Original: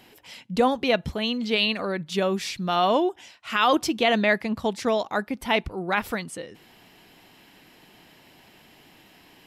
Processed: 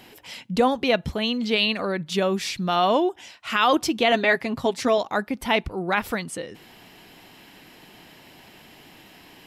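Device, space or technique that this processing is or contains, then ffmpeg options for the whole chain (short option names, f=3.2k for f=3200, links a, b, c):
parallel compression: -filter_complex "[0:a]asplit=2[a][b];[b]acompressor=threshold=-34dB:ratio=6,volume=-3dB[c];[a][c]amix=inputs=2:normalize=0,asettb=1/sr,asplit=3[d][e][f];[d]atrim=end=4.114[g];[e]atrim=start=4.11:end=4.98,asetpts=PTS-STARTPTS,afade=t=in:d=0.004:c=qsin,afade=t=out:st=0.866:d=0.004:c=qsin,aecho=1:1:7.4:0.6,atrim=end_sample=38367[h];[f]atrim=start=4.976[i];[g][h]acrossfade=d=0.004:c1=hsin:c2=qsin[j];[j][i]acrossfade=d=0.004:c1=qsin:c2=hsin"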